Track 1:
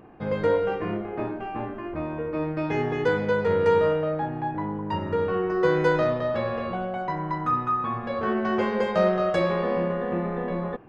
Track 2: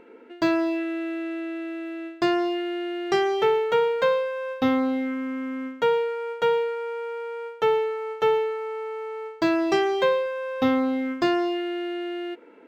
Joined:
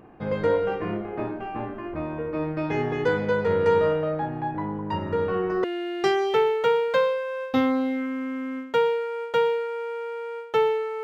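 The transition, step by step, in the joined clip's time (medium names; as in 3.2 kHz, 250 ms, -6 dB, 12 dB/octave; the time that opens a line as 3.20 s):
track 1
5.64 s: go over to track 2 from 2.72 s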